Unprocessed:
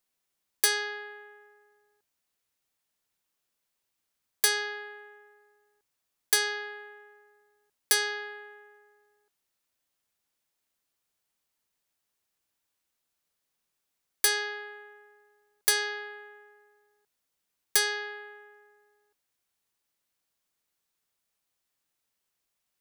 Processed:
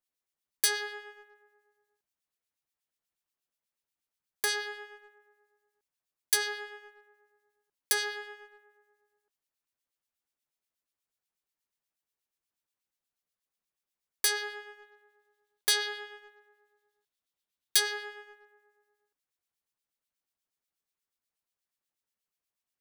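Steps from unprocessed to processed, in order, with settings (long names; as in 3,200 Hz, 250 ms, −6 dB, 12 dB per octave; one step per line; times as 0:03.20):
two-band tremolo in antiphase 8.3 Hz, depth 70%, crossover 2,000 Hz
leveller curve on the samples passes 1
0:14.82–0:17.80: parametric band 3,600 Hz +6.5 dB 0.6 octaves
level −3.5 dB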